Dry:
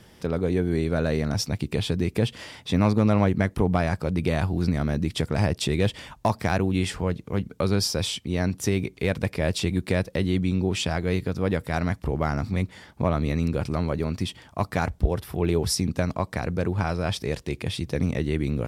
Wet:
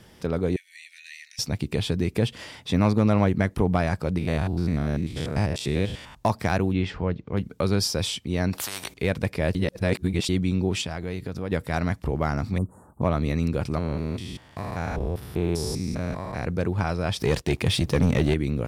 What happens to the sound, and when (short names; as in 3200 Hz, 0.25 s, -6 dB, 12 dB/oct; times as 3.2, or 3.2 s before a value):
0.56–1.39 rippled Chebyshev high-pass 1800 Hz, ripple 6 dB
4.18–6.15 stepped spectrum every 0.1 s
6.73–7.37 air absorption 200 m
8.53–8.94 spectral compressor 10:1
9.55–10.29 reverse
10.81–11.52 compressor 3:1, threshold -28 dBFS
12.58–13.02 elliptic band-stop 1200–8200 Hz
13.78–16.45 stepped spectrum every 0.2 s
17.19–18.34 sample leveller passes 2